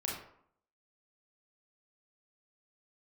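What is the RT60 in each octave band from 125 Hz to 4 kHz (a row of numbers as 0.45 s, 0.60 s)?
0.60 s, 0.70 s, 0.65 s, 0.65 s, 0.55 s, 0.40 s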